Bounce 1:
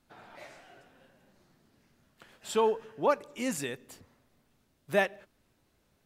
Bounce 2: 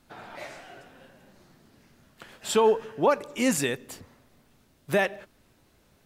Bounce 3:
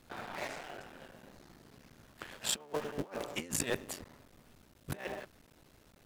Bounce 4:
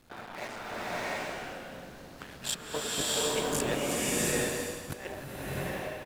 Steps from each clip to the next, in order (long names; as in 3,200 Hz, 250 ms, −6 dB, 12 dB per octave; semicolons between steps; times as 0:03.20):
brickwall limiter −20.5 dBFS, peak gain reduction 9 dB; level +8.5 dB
sub-harmonics by changed cycles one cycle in 3, muted; compressor whose output falls as the input rises −32 dBFS, ratio −0.5; level −4.5 dB
far-end echo of a speakerphone 260 ms, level −11 dB; slow-attack reverb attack 710 ms, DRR −7.5 dB